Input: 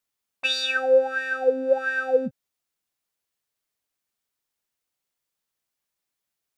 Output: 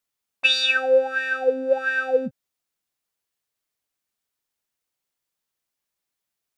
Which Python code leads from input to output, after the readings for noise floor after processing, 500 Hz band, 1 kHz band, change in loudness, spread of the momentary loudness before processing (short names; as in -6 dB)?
-84 dBFS, 0.0 dB, +0.5 dB, +2.0 dB, 6 LU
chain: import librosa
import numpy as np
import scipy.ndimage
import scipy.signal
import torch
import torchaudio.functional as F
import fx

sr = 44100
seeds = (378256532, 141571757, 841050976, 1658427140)

y = fx.dynamic_eq(x, sr, hz=2800.0, q=1.1, threshold_db=-38.0, ratio=4.0, max_db=7)